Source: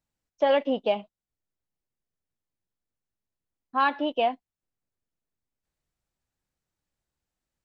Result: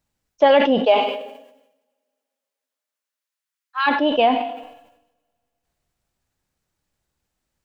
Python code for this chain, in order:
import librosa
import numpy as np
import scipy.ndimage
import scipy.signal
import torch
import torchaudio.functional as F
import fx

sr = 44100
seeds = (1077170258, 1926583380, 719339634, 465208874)

y = fx.highpass(x, sr, hz=fx.line((0.79, 380.0), (3.86, 1400.0)), slope=24, at=(0.79, 3.86), fade=0.02)
y = fx.rev_double_slope(y, sr, seeds[0], early_s=0.68, late_s=2.6, knee_db=-28, drr_db=15.0)
y = fx.sustainer(y, sr, db_per_s=67.0)
y = y * librosa.db_to_amplitude(8.0)